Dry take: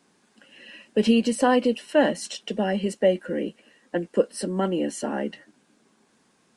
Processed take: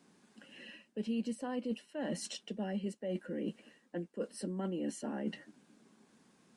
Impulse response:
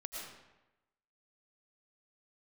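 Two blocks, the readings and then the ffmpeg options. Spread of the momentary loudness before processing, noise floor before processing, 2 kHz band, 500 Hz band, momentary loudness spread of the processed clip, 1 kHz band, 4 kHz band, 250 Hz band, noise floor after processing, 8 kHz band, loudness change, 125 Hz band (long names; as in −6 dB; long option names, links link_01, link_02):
11 LU, −65 dBFS, −18.0 dB, −17.5 dB, 14 LU, −19.5 dB, −14.5 dB, −13.0 dB, −70 dBFS, −12.0 dB, −15.0 dB, −10.0 dB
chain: -af "areverse,acompressor=threshold=-34dB:ratio=6,areverse,equalizer=frequency=200:width=0.9:gain=6,volume=-5dB"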